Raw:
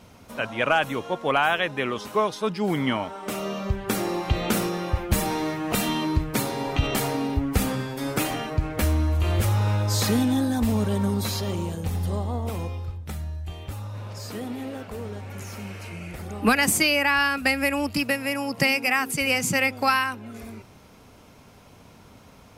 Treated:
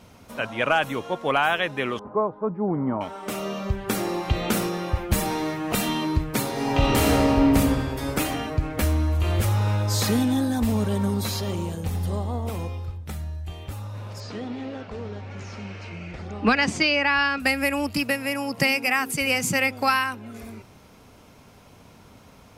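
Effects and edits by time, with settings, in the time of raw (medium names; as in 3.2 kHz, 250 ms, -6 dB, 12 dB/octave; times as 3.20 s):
1.99–3.01 s: low-pass 1.1 kHz 24 dB/octave
6.51–7.46 s: reverb throw, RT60 2.7 s, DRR -4.5 dB
14.20–17.40 s: low-pass 5.7 kHz 24 dB/octave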